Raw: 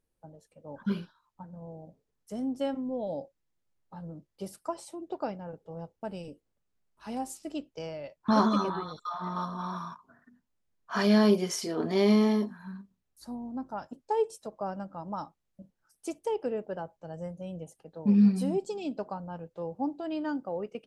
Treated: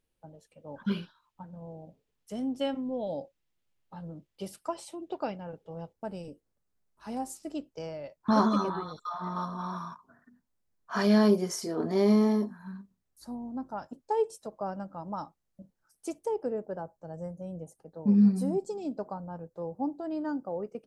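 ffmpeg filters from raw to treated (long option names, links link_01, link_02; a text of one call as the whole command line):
ffmpeg -i in.wav -af "asetnsamples=nb_out_samples=441:pad=0,asendcmd='5.93 equalizer g -4.5;11.28 equalizer g -11;12.66 equalizer g -3.5;16.26 equalizer g -14.5',equalizer=frequency=2900:width_type=o:width=1:gain=6.5" out.wav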